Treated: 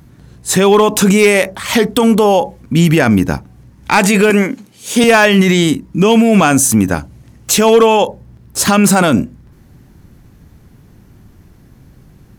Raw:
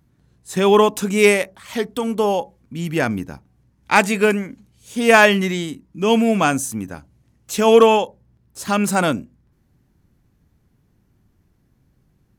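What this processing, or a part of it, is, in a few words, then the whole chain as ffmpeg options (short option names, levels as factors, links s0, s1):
loud club master: -filter_complex "[0:a]asettb=1/sr,asplit=3[s0][s1][s2];[s0]atrim=end=4.304[s3];[s1]atrim=start=4.3:end=5.04,asetpts=PTS-STARTPTS,afade=t=in:d=0.004:c=qsin,afade=t=out:st=0.736:d=0.004:c=qsin,highpass=240[s4];[s2]atrim=start=5.036[s5];[s3][s4]acrossfade=d=0.004:c1=hsin:c2=qsin[s6];[s6][s5]acrossfade=d=0.004:c1=qsin:c2=hsin,acompressor=threshold=0.178:ratio=2,asoftclip=type=hard:threshold=0.335,alimiter=level_in=8.91:limit=0.891:release=50:level=0:latency=1,volume=0.891"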